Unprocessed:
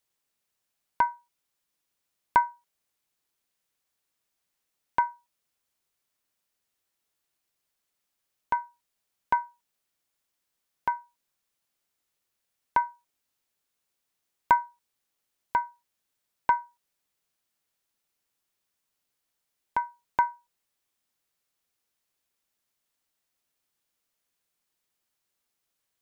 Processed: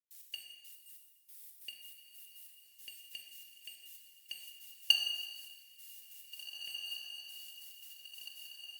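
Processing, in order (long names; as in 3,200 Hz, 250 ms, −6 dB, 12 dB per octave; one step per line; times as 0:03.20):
spike at every zero crossing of −15.5 dBFS
Chebyshev band-stop filter 260–560 Hz, order 4
noise gate −15 dBFS, range −29 dB
dynamic equaliser 890 Hz, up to −4 dB, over −48 dBFS, Q 5.3
change of speed 2.96×
gate pattern ".x.x..x.x...xx" 140 BPM −60 dB
on a send: feedback delay with all-pass diffusion 1,939 ms, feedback 60%, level −9.5 dB
on the sum: dense smooth reverb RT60 1.4 s, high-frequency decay 1×, DRR 2 dB
level +8.5 dB
Opus 48 kbit/s 48,000 Hz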